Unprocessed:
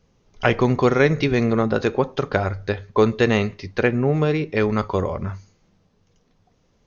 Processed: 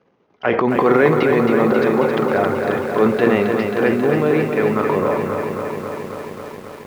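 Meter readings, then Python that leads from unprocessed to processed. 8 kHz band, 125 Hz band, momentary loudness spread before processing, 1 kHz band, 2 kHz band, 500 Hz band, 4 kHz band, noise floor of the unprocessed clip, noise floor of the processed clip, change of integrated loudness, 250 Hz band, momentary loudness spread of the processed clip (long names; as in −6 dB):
can't be measured, −3.0 dB, 8 LU, +5.5 dB, +3.0 dB, +5.0 dB, −1.5 dB, −63 dBFS, −59 dBFS, +3.5 dB, +4.0 dB, 13 LU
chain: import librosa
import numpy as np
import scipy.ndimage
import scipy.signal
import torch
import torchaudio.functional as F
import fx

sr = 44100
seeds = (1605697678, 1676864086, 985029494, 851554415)

y = scipy.signal.sosfilt(scipy.signal.butter(2, 2000.0, 'lowpass', fs=sr, output='sos'), x)
y = fx.transient(y, sr, attack_db=-6, sustain_db=10)
y = scipy.signal.sosfilt(scipy.signal.butter(2, 260.0, 'highpass', fs=sr, output='sos'), y)
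y = fx.echo_crushed(y, sr, ms=269, feedback_pct=80, bits=8, wet_db=-5.5)
y = y * 10.0 ** (4.5 / 20.0)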